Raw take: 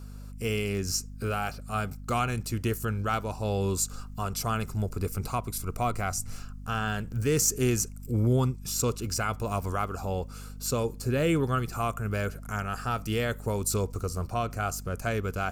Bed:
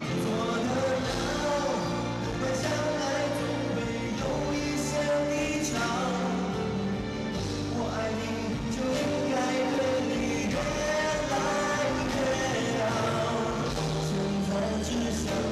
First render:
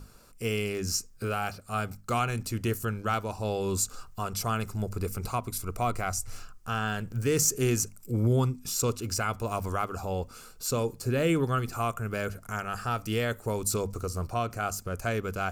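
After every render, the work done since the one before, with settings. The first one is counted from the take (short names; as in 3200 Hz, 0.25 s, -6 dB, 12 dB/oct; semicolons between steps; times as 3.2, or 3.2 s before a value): notches 50/100/150/200/250 Hz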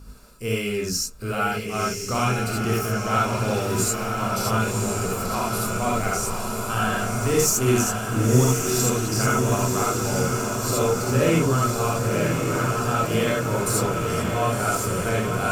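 diffused feedback echo 1.051 s, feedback 70%, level -4 dB; non-linear reverb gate 0.1 s rising, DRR -3.5 dB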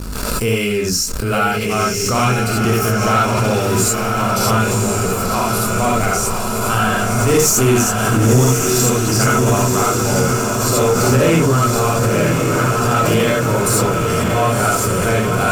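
sample leveller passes 2; backwards sustainer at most 23 dB/s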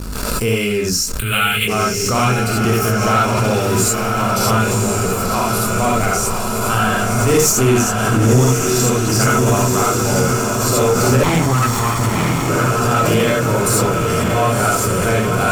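1.19–1.68 EQ curve 120 Hz 0 dB, 290 Hz -8 dB, 680 Hz -10 dB, 3500 Hz +13 dB, 5100 Hz -18 dB, 9000 Hz +9 dB; 7.52–9.1 high shelf 8000 Hz -4.5 dB; 11.23–12.49 minimum comb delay 0.9 ms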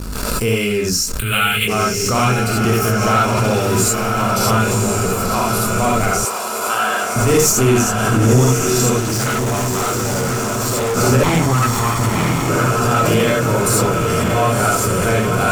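6.25–7.16 HPF 440 Hz; 9–10.97 hard clip -16.5 dBFS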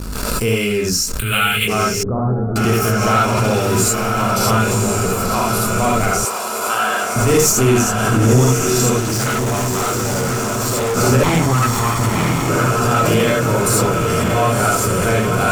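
2.03–2.56 Gaussian blur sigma 10 samples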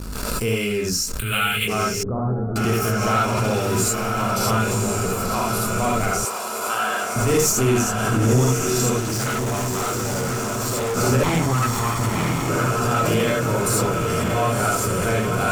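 gain -5 dB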